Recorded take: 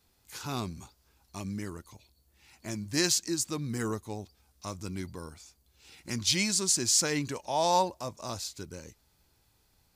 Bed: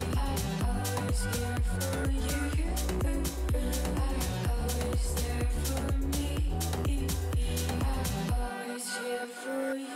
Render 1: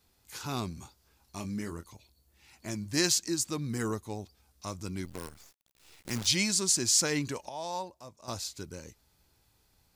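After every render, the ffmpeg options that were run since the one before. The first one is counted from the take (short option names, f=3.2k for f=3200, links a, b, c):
-filter_complex "[0:a]asettb=1/sr,asplit=3[a][b][c];[a]atrim=end=0.794[d];[b]atrim=start=0.79:end=1.88,asetpts=PTS-STARTPTS,afade=t=in:d=0.004:c=qsin,afade=t=out:st=1.086:d=0.004:c=qsin,asplit=2[e][f];[f]adelay=24,volume=-8.5dB[g];[e][g]amix=inputs=2:normalize=0,atrim=end_sample=48069[h];[c]atrim=start=1.876[i];[d][h]acrossfade=d=0.004:c1=hsin:c2=qsin[j];[j][i]acrossfade=d=0.004:c1=qsin:c2=hsin,asettb=1/sr,asplit=3[k][l][m];[k]atrim=end=5.054[n];[l]atrim=start=5.05:end=6.27,asetpts=PTS-STARTPTS,afade=t=in:d=0.004:c=qsin,afade=t=out:st=1.216:d=0.004:c=qsin,acrusher=bits=7:dc=4:mix=0:aa=0.000001[o];[m]atrim=start=6.266[p];[n][o]acrossfade=d=0.004:c1=hsin:c2=qsin[q];[q][p]acrossfade=d=0.004:c1=qsin:c2=hsin,asplit=3[r][s][t];[r]atrim=end=7.492[u];[s]atrim=start=7.488:end=8.282,asetpts=PTS-STARTPTS,volume=-11dB[v];[t]atrim=start=8.278[w];[u][v]acrossfade=d=0.004:c1=hsin:c2=hsin[x];[x][w]acrossfade=d=0.004:c1=hsin:c2=hsin"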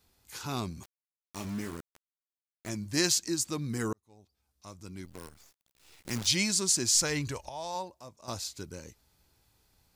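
-filter_complex "[0:a]asettb=1/sr,asplit=3[a][b][c];[a]atrim=end=0.834[d];[b]atrim=start=0.83:end=2.69,asetpts=PTS-STARTPTS,afade=t=in:d=0.004:c=qsin,afade=t=out:st=1.856:d=0.004:c=qsin,aeval=exprs='val(0)*gte(abs(val(0)),0.00944)':c=same[e];[c]atrim=start=2.686[f];[d][e]acrossfade=d=0.004:c1=hsin:c2=qsin[g];[g][f]acrossfade=d=0.004:c1=qsin:c2=hsin,asplit=3[h][i][j];[h]afade=t=out:st=6.94:d=0.02[k];[i]asubboost=boost=8:cutoff=75,afade=t=in:st=6.94:d=0.02,afade=t=out:st=7.74:d=0.02[l];[j]afade=t=in:st=7.74:d=0.02[m];[k][l][m]amix=inputs=3:normalize=0,asplit=2[n][o];[n]atrim=end=3.93,asetpts=PTS-STARTPTS,afade=t=out:st=3.926:d=0.004:c=hsin[p];[o]atrim=start=3.93,asetpts=PTS-STARTPTS,afade=t=in:d=2.16[q];[p][q]concat=n=2:v=0:a=1"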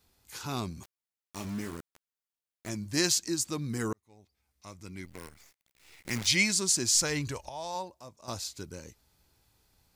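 -filter_complex "[0:a]asettb=1/sr,asplit=3[a][b][c];[a]atrim=end=3.904[d];[b]atrim=start=3.9:end=6.53,asetpts=PTS-STARTPTS,afade=t=in:d=0.004:c=qsin,afade=t=out:st=2.626:d=0.004:c=qsin,equalizer=f=2.1k:w=3:g=8.5[e];[c]atrim=start=6.526[f];[d][e]acrossfade=d=0.004:c1=hsin:c2=qsin[g];[g][f]acrossfade=d=0.004:c1=qsin:c2=hsin"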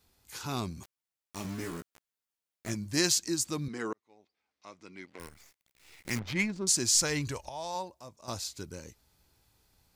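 -filter_complex "[0:a]asettb=1/sr,asplit=3[a][b][c];[a]atrim=end=1.434[d];[b]atrim=start=1.43:end=2.74,asetpts=PTS-STARTPTS,afade=t=in:d=0.004:c=qsin,afade=t=out:st=1.306:d=0.004:c=qsin,asplit=2[e][f];[f]adelay=17,volume=-4dB[g];[e][g]amix=inputs=2:normalize=0,atrim=end_sample=57771[h];[c]atrim=start=2.736[i];[d][h]acrossfade=d=0.004:c1=hsin:c2=qsin[j];[j][i]acrossfade=d=0.004:c1=qsin:c2=hsin,asettb=1/sr,asplit=3[k][l][m];[k]atrim=end=3.684[n];[l]atrim=start=3.68:end=5.2,asetpts=PTS-STARTPTS,afade=t=in:d=0.004:c=qsin,afade=t=out:st=1.516:d=0.004:c=qsin,highpass=300,lowpass=4.2k[o];[m]atrim=start=5.196[p];[n][o]acrossfade=d=0.004:c1=hsin:c2=qsin[q];[q][p]acrossfade=d=0.004:c1=qsin:c2=hsin,asettb=1/sr,asplit=3[r][s][t];[r]atrim=end=6.194[u];[s]atrim=start=6.19:end=6.67,asetpts=PTS-STARTPTS,afade=t=in:d=0.004:c=qsin,afade=t=out:st=0.476:d=0.004:c=qsin,adynamicsmooth=sensitivity=1:basefreq=790[v];[t]atrim=start=6.666[w];[u][v]acrossfade=d=0.004:c1=hsin:c2=qsin[x];[x][w]acrossfade=d=0.004:c1=qsin:c2=hsin"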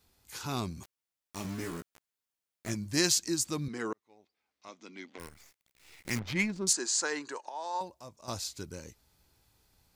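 -filter_complex "[0:a]asettb=1/sr,asplit=3[a][b][c];[a]atrim=end=4.684[d];[b]atrim=start=4.68:end=5.18,asetpts=PTS-STARTPTS,afade=t=in:d=0.004:c=qsin,afade=t=out:st=0.496:d=0.004:c=qsin,highpass=230,equalizer=f=240:t=q:w=4:g=10,equalizer=f=740:t=q:w=4:g=3,equalizer=f=3.4k:t=q:w=4:g=8,equalizer=f=6.4k:t=q:w=4:g=6,lowpass=f=8k:w=0.5412,lowpass=f=8k:w=1.3066[e];[c]atrim=start=5.176[f];[d][e]acrossfade=d=0.004:c1=hsin:c2=qsin[g];[g][f]acrossfade=d=0.004:c1=qsin:c2=hsin,asettb=1/sr,asplit=3[h][i][j];[h]atrim=end=6.734[k];[i]atrim=start=6.73:end=7.81,asetpts=PTS-STARTPTS,afade=t=in:d=0.004:c=qsin,afade=t=out:st=1.076:d=0.004:c=qsin,highpass=f=320:w=0.5412,highpass=f=320:w=1.3066,equalizer=f=600:t=q:w=4:g=-5,equalizer=f=940:t=q:w=4:g=4,equalizer=f=1.6k:t=q:w=4:g=5,equalizer=f=2.3k:t=q:w=4:g=-8,equalizer=f=3.3k:t=q:w=4:g=-7,equalizer=f=5.5k:t=q:w=4:g=-9,lowpass=f=7.4k:w=0.5412,lowpass=f=7.4k:w=1.3066[l];[j]atrim=start=7.806[m];[k][l]acrossfade=d=0.004:c1=hsin:c2=qsin[n];[n][m]acrossfade=d=0.004:c1=qsin:c2=hsin"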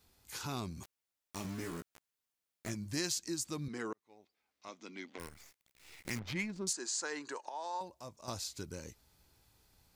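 -af "acompressor=threshold=-40dB:ratio=2"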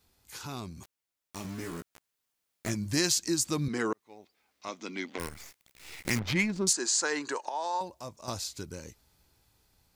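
-af "dynaudnorm=f=360:g=13:m=10dB"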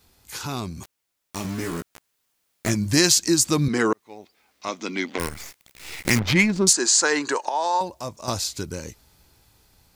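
-af "volume=9.5dB,alimiter=limit=-3dB:level=0:latency=1"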